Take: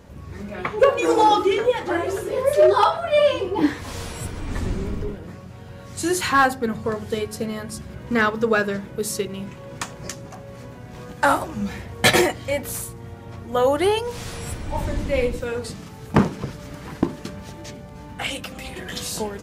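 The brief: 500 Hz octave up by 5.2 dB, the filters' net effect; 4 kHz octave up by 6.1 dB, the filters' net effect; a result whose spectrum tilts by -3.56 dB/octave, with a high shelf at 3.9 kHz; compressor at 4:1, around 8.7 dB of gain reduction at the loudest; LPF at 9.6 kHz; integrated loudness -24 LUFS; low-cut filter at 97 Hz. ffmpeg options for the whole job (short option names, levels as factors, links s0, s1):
-af "highpass=97,lowpass=9600,equalizer=f=500:t=o:g=6,highshelf=f=3900:g=6.5,equalizer=f=4000:t=o:g=4,acompressor=threshold=0.158:ratio=4,volume=0.891"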